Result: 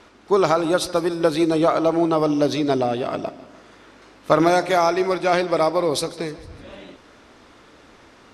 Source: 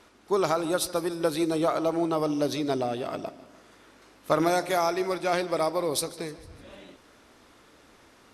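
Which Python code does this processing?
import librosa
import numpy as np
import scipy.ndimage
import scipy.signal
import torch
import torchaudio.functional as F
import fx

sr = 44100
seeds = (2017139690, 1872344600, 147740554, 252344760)

y = fx.air_absorb(x, sr, metres=59.0)
y = y * librosa.db_to_amplitude(7.5)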